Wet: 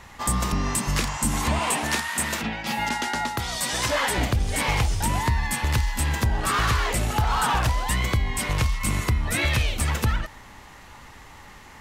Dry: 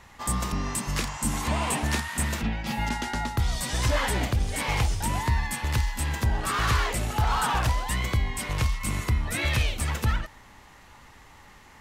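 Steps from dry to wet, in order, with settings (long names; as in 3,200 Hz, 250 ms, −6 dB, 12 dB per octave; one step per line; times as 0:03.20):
0:01.59–0:04.18: high-pass filter 360 Hz 6 dB per octave
downward compressor 3 to 1, threshold −25 dBFS, peak gain reduction 5.5 dB
level +5.5 dB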